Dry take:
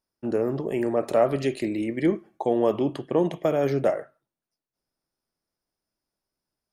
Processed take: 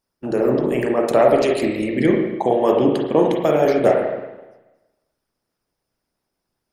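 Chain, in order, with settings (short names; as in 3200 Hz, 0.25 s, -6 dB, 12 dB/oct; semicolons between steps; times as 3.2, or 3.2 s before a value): spring tank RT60 1.1 s, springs 32/40/47 ms, chirp 25 ms, DRR -1 dB; harmonic-percussive split percussive +9 dB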